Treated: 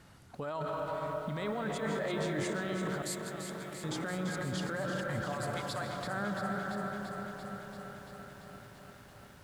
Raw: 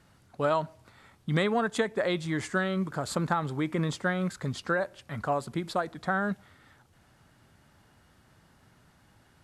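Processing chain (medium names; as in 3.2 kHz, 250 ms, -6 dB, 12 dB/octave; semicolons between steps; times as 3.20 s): 5.32–6.01 s: amplifier tone stack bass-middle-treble 10-0-10; reverberation RT60 3.3 s, pre-delay 100 ms, DRR 8 dB; compressor with a negative ratio -32 dBFS, ratio -1; 3.02–3.84 s: differentiator; peak limiter -28.5 dBFS, peak gain reduction 9.5 dB; 1.81–2.45 s: doubling 20 ms -3 dB; feedback echo behind a low-pass 246 ms, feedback 77%, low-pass 450 Hz, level -13 dB; bit-crushed delay 340 ms, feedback 80%, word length 10-bit, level -8 dB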